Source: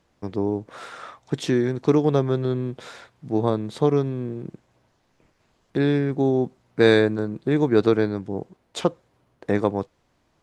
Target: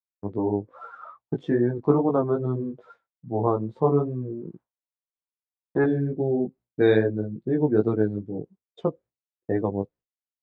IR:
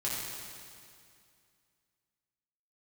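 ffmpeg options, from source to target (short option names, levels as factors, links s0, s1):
-af "asetnsamples=n=441:p=0,asendcmd='4.42 equalizer g 13.5;5.84 equalizer g -3',equalizer=f=1000:t=o:w=1.5:g=5.5,flanger=delay=16.5:depth=4:speed=2.4,aemphasis=mode=reproduction:type=75fm,afftdn=nr=19:nf=-32,agate=range=0.0224:threshold=0.00631:ratio=3:detection=peak"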